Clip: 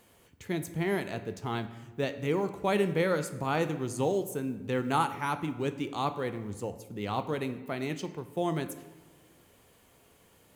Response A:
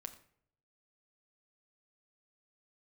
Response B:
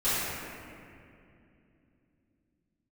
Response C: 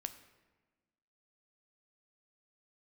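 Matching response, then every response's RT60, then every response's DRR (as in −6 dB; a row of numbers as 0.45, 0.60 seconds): C; 0.65, 2.6, 1.3 seconds; 5.5, −17.5, 9.0 decibels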